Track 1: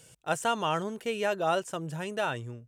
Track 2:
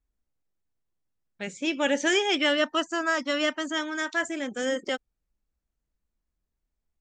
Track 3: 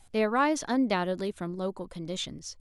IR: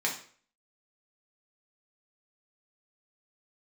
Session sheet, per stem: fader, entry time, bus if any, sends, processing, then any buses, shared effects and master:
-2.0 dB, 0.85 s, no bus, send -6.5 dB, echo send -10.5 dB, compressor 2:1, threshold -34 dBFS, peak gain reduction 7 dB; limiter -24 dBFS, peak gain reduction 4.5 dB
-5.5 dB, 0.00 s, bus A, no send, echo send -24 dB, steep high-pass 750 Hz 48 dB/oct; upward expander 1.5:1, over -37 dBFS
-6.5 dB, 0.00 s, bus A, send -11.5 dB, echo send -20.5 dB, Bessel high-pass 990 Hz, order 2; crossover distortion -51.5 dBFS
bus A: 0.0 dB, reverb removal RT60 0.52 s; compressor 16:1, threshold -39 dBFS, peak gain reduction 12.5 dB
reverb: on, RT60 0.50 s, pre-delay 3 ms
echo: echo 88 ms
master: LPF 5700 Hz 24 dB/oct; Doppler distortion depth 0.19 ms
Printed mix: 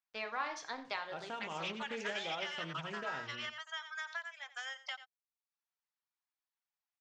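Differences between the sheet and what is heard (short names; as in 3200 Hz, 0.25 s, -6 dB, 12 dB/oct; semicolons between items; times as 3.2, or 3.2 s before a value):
stem 1 -2.0 dB -> -13.0 dB; stem 2 -5.5 dB -> +5.0 dB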